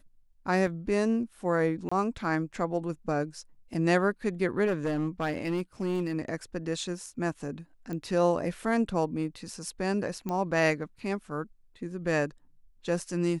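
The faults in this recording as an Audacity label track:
0.670000	0.670000	dropout 2.4 ms
1.890000	1.920000	dropout 25 ms
4.660000	6.130000	clipped -24 dBFS
7.930000	7.930000	pop -24 dBFS
10.290000	10.290000	pop -20 dBFS

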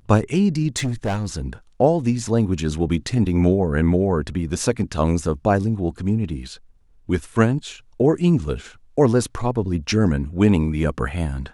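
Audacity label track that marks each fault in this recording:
0.770000	1.400000	clipped -18.5 dBFS

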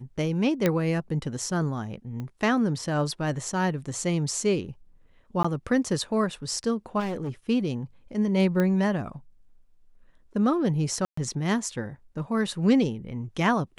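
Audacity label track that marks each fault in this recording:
0.660000	0.660000	pop -9 dBFS
2.200000	2.200000	pop -24 dBFS
5.430000	5.450000	dropout 15 ms
6.990000	7.300000	clipped -27 dBFS
8.600000	8.600000	pop -14 dBFS
11.050000	11.170000	dropout 124 ms

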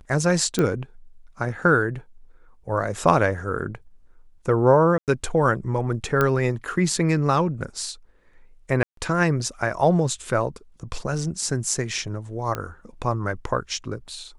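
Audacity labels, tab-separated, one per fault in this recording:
0.590000	0.590000	pop -9 dBFS
4.980000	5.080000	dropout 98 ms
6.210000	6.210000	pop -8 dBFS
8.830000	8.970000	dropout 143 ms
12.550000	12.550000	pop -14 dBFS

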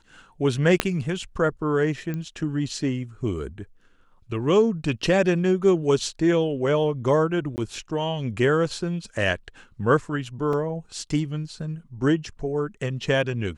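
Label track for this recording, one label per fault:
0.800000	0.800000	pop -4 dBFS
2.140000	2.140000	pop -19 dBFS
7.560000	7.580000	dropout 19 ms
10.530000	10.530000	dropout 2.8 ms

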